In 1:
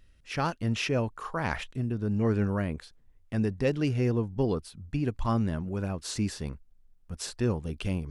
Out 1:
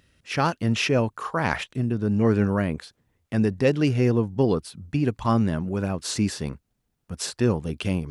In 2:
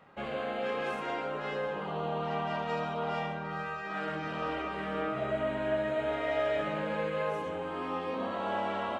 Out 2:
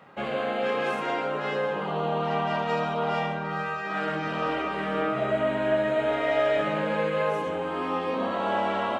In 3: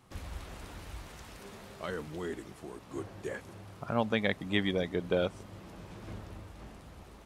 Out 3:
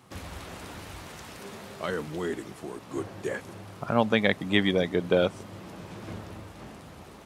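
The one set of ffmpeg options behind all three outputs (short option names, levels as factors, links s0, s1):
-af "highpass=100,volume=2.11"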